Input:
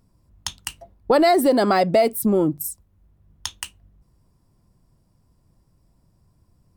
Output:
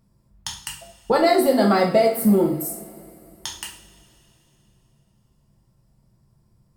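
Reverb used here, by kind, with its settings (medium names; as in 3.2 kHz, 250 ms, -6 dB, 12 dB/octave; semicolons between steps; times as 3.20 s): two-slope reverb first 0.48 s, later 3.2 s, from -21 dB, DRR -1.5 dB; trim -4 dB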